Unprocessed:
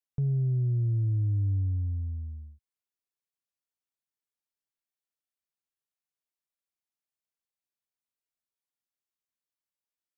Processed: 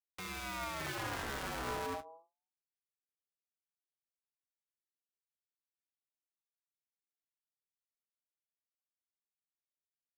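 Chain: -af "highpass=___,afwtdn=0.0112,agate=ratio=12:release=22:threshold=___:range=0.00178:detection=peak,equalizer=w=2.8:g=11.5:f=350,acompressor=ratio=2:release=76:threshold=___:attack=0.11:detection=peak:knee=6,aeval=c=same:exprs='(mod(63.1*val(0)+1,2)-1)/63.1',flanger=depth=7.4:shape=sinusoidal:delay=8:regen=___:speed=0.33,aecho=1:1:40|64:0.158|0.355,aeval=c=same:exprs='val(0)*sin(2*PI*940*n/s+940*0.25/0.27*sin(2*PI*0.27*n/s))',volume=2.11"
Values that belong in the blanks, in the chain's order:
130, 0.00891, 0.0224, -36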